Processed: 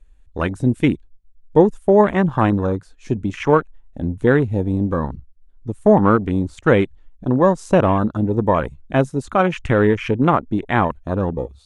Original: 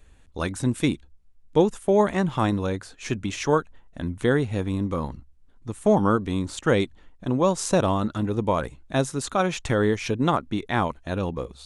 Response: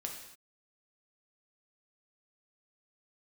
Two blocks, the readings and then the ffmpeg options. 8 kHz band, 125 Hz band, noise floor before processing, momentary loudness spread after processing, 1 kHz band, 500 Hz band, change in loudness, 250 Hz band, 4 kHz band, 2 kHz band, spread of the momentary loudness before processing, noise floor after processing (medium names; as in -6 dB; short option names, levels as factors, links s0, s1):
no reading, +6.5 dB, -53 dBFS, 11 LU, +6.5 dB, +6.5 dB, +6.5 dB, +6.5 dB, -2.5 dB, +5.5 dB, 11 LU, -50 dBFS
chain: -af "afwtdn=0.0224,volume=2.11"